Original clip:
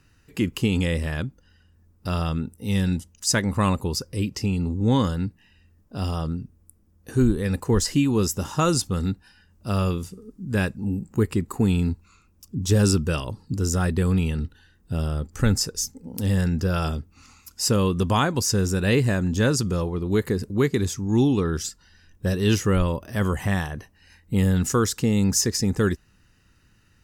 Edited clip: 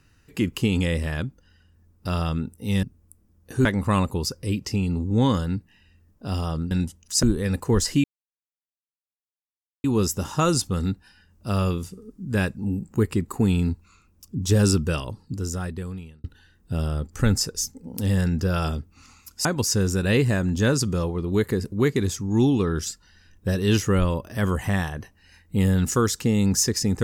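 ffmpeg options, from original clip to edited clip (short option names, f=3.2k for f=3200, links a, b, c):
-filter_complex "[0:a]asplit=8[a][b][c][d][e][f][g][h];[a]atrim=end=2.832[i];[b]atrim=start=6.408:end=7.232[j];[c]atrim=start=3.348:end=6.412[k];[d]atrim=start=2.828:end=3.352[l];[e]atrim=start=7.228:end=8.04,asetpts=PTS-STARTPTS,afade=t=out:st=0.808:d=0.004:c=hsin,apad=pad_dur=1.8[m];[f]atrim=start=8.04:end=14.44,asetpts=PTS-STARTPTS,afade=t=in:d=0.004:c=hsin,afade=t=out:st=5.02:d=1.38[n];[g]atrim=start=14.44:end=17.652,asetpts=PTS-STARTPTS,afade=t=in:d=0.004:c=hsin[o];[h]atrim=start=18.228[p];[i][j]acrossfade=d=0.004:c1=hsin:c2=hsin[q];[q][k]acrossfade=d=0.004:c1=hsin:c2=hsin[r];[r][l]acrossfade=d=0.004:c1=hsin:c2=hsin[s];[m][n][o]concat=n=3:v=0:a=1[t];[s][t]acrossfade=d=0.004:c1=hsin:c2=hsin[u];[u][p]acrossfade=d=0.004:c1=hsin:c2=hsin"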